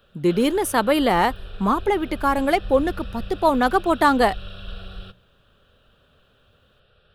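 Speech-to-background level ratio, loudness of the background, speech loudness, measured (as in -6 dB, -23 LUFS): 18.5 dB, -39.0 LUFS, -20.5 LUFS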